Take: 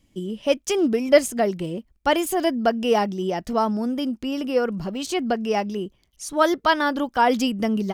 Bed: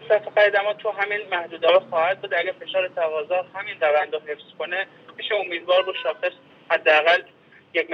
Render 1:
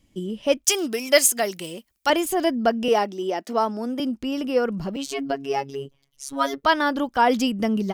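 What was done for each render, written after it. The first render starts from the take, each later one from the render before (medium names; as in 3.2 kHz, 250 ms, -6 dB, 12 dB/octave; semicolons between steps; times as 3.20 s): 0.65–2.10 s: tilt EQ +4 dB/octave; 2.88–4.00 s: high-pass 250 Hz 24 dB/octave; 4.96–6.63 s: robot voice 138 Hz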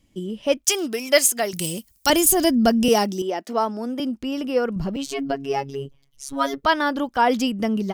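1.53–3.22 s: tone controls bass +14 dB, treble +15 dB; 4.76–6.66 s: bass shelf 130 Hz +11 dB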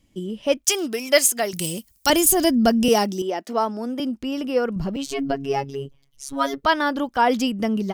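5.10–5.65 s: bass shelf 140 Hz +8.5 dB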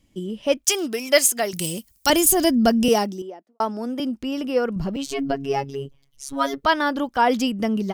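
2.82–3.60 s: studio fade out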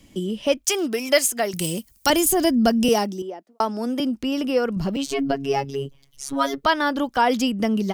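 three bands compressed up and down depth 40%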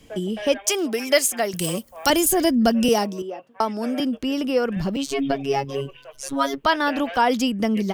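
add bed -18.5 dB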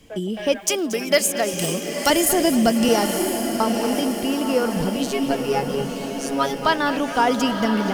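echo that smears into a reverb 972 ms, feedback 53%, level -6 dB; bit-crushed delay 230 ms, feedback 55%, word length 7-bit, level -13.5 dB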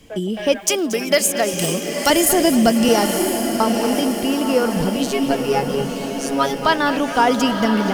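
trim +3 dB; peak limiter -3 dBFS, peak gain reduction 2.5 dB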